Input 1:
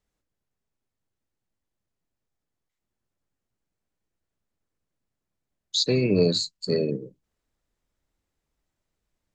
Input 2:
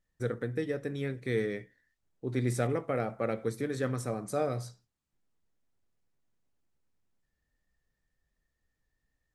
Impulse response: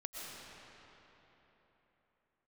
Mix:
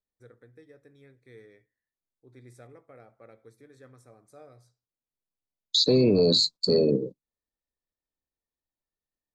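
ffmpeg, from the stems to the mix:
-filter_complex "[0:a]agate=range=-22dB:threshold=-42dB:ratio=16:detection=peak,equalizer=f=125:t=o:w=1:g=3,equalizer=f=250:t=o:w=1:g=7,equalizer=f=500:t=o:w=1:g=8,equalizer=f=1k:t=o:w=1:g=9,equalizer=f=2k:t=o:w=1:g=-10,equalizer=f=4k:t=o:w=1:g=12,alimiter=limit=-11.5dB:level=0:latency=1:release=13,volume=-1.5dB[a];[1:a]equalizer=f=190:t=o:w=0.54:g=-9.5,volume=-19.5dB[b];[a][b]amix=inputs=2:normalize=0,asuperstop=centerf=2900:order=4:qfactor=5.8"

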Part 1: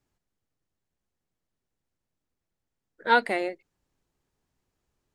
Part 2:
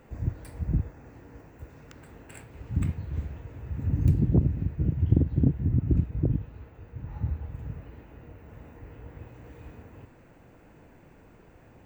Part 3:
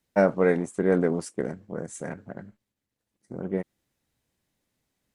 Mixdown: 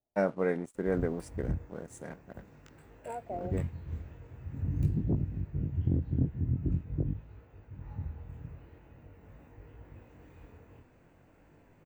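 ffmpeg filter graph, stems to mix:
-filter_complex "[0:a]acompressor=threshold=-26dB:ratio=6,lowpass=f=670:t=q:w=6.7,volume=-15dB[a];[1:a]flanger=delay=19.5:depth=4.3:speed=0.45,adelay=750,volume=-4dB[b];[2:a]aeval=exprs='sgn(val(0))*max(abs(val(0))-0.00316,0)':c=same,adynamicequalizer=threshold=0.00708:dfrequency=2700:dqfactor=0.7:tfrequency=2700:tqfactor=0.7:attack=5:release=100:ratio=0.375:range=2.5:mode=cutabove:tftype=highshelf,volume=-8dB[c];[a][b][c]amix=inputs=3:normalize=0"

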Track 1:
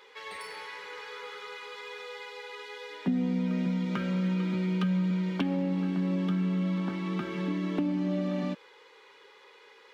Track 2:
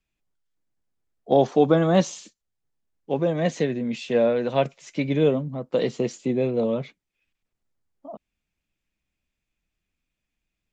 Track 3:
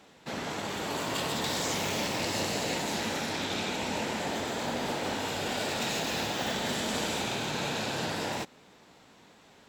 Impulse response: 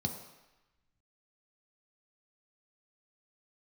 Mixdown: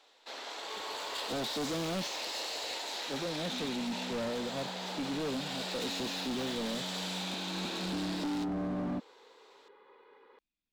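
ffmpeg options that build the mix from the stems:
-filter_complex "[0:a]lowpass=1.2k,adelay=450,volume=-4dB[a];[1:a]volume=-15dB,asplit=2[b][c];[2:a]highpass=f=450:w=0.5412,highpass=f=450:w=1.3066,volume=-10dB[d];[c]apad=whole_len=458109[e];[a][e]sidechaincompress=threshold=-52dB:ratio=8:attack=30:release=1210[f];[f][b][d]amix=inputs=3:normalize=0,equalizer=f=125:t=o:w=1:g=-4,equalizer=f=250:t=o:w=1:g=9,equalizer=f=1k:t=o:w=1:g=3,equalizer=f=4k:t=o:w=1:g=10,asoftclip=type=hard:threshold=-32dB"

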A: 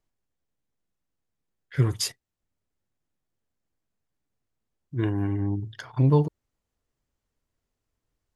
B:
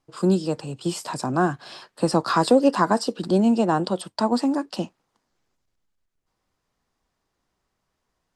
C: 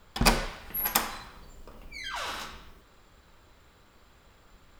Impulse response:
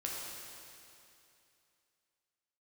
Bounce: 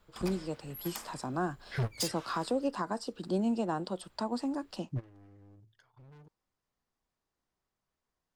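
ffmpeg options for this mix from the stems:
-filter_complex "[0:a]asoftclip=type=hard:threshold=-27.5dB,volume=0dB[a];[1:a]volume=-11dB,asplit=2[b][c];[2:a]acompressor=threshold=-41dB:ratio=1.5,volume=-10.5dB[d];[c]apad=whole_len=368616[e];[a][e]sidechaingate=range=-26dB:threshold=-55dB:ratio=16:detection=peak[f];[f][b][d]amix=inputs=3:normalize=0,alimiter=limit=-22dB:level=0:latency=1:release=358"

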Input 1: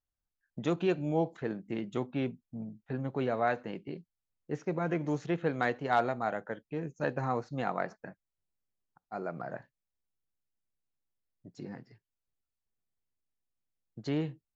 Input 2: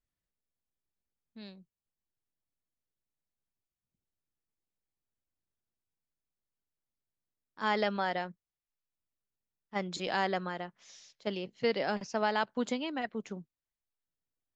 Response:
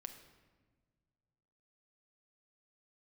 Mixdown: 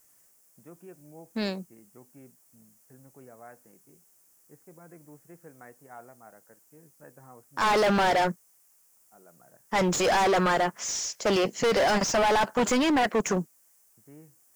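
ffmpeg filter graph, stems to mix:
-filter_complex "[0:a]lowpass=f=2.1k:w=0.5412,lowpass=f=2.1k:w=1.3066,volume=-19dB[a];[1:a]aexciter=amount=14.8:drive=5.3:freq=5.8k,asplit=2[b][c];[c]highpass=f=720:p=1,volume=33dB,asoftclip=type=tanh:threshold=-9.5dB[d];[b][d]amix=inputs=2:normalize=0,lowpass=f=1.1k:p=1,volume=-6dB,volume=1.5dB[e];[a][e]amix=inputs=2:normalize=0,volume=20.5dB,asoftclip=hard,volume=-20.5dB"

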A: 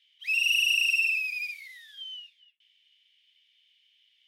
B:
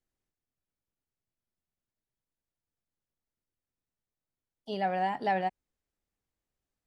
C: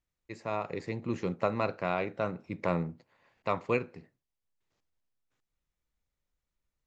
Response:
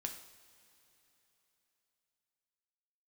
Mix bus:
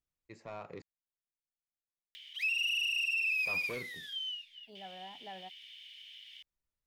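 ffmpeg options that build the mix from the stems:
-filter_complex "[0:a]acompressor=mode=upward:threshold=-42dB:ratio=2.5,equalizer=f=710:w=1.5:g=-5,adelay=2150,volume=2dB[a];[1:a]volume=-19dB[b];[2:a]asoftclip=type=tanh:threshold=-27.5dB,volume=-8dB,asplit=3[c][d][e];[c]atrim=end=0.82,asetpts=PTS-STARTPTS,afade=t=out:st=0.816:d=0.004:c=hsin[f];[d]atrim=start=0.82:end=3.05,asetpts=PTS-STARTPTS,volume=0[g];[e]atrim=start=3.05,asetpts=PTS-STARTPTS,afade=t=in:d=0.004:c=hsin[h];[f][g][h]concat=n=3:v=0:a=1[i];[a][b][i]amix=inputs=3:normalize=0,acrossover=split=3700[j][k];[k]acompressor=threshold=-40dB:ratio=4:attack=1:release=60[l];[j][l]amix=inputs=2:normalize=0,alimiter=level_in=2dB:limit=-24dB:level=0:latency=1:release=88,volume=-2dB"

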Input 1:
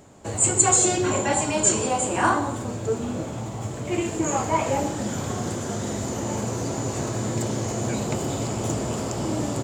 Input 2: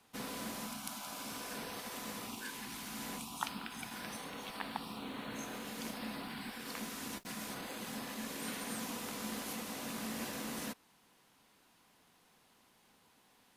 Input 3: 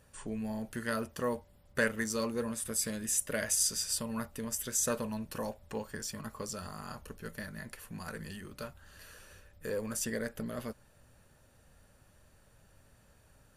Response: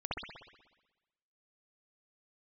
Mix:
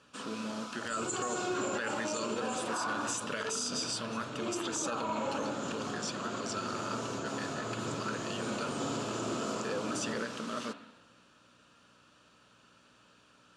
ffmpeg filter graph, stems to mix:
-filter_complex "[0:a]adelay=500,volume=-9dB,asplit=2[a][b];[b]volume=-4.5dB[c];[1:a]volume=-2dB,asplit=2[d][e];[e]volume=-8dB[f];[2:a]equalizer=f=2.9k:t=o:w=1.1:g=11,volume=0dB,asplit=2[g][h];[h]apad=whole_len=446827[i];[a][i]sidechaincompress=threshold=-50dB:ratio=8:attack=16:release=183[j];[3:a]atrim=start_sample=2205[k];[c][f]amix=inputs=2:normalize=0[l];[l][k]afir=irnorm=-1:irlink=0[m];[j][d][g][m]amix=inputs=4:normalize=0,aeval=exprs='val(0)+0.001*(sin(2*PI*60*n/s)+sin(2*PI*2*60*n/s)/2+sin(2*PI*3*60*n/s)/3+sin(2*PI*4*60*n/s)/4+sin(2*PI*5*60*n/s)/5)':c=same,highpass=220,equalizer=f=780:t=q:w=4:g=-7,equalizer=f=1.3k:t=q:w=4:g=9,equalizer=f=2k:t=q:w=4:g=-9,lowpass=f=7.5k:w=0.5412,lowpass=f=7.5k:w=1.3066,alimiter=level_in=1dB:limit=-24dB:level=0:latency=1:release=44,volume=-1dB"

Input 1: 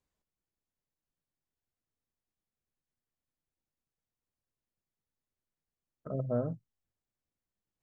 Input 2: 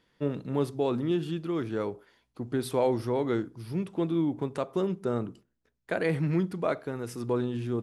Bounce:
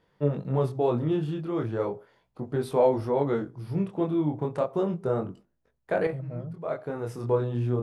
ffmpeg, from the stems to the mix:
-filter_complex "[0:a]volume=-9dB,asplit=2[a][b];[1:a]flanger=delay=20:depth=6.9:speed=0.35,equalizer=f=630:t=o:w=2.5:g=13,volume=-3.5dB[c];[b]apad=whole_len=345084[d];[c][d]sidechaincompress=threshold=-53dB:ratio=12:attack=7.9:release=374[e];[a][e]amix=inputs=2:normalize=0,lowshelf=f=200:t=q:w=1.5:g=7.5"

